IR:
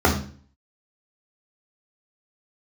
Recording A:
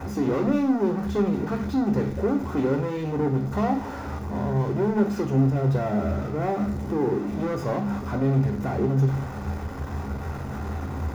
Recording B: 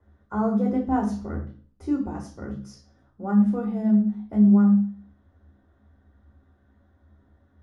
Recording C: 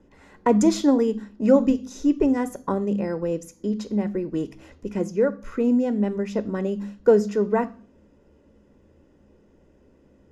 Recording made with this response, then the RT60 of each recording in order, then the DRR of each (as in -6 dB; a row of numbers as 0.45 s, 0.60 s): B; 0.45 s, 0.45 s, 0.45 s; 3.5 dB, -2.5 dB, 12.5 dB